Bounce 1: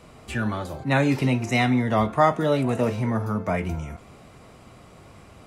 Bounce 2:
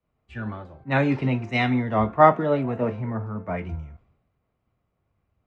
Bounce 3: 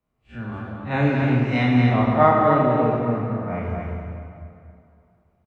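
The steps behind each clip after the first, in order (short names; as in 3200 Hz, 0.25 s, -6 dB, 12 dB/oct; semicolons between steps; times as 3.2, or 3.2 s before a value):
LPF 2400 Hz 12 dB/oct; three-band expander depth 100%; gain -2 dB
time blur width 84 ms; echo 0.236 s -4.5 dB; plate-style reverb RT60 2.6 s, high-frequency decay 0.7×, DRR 0 dB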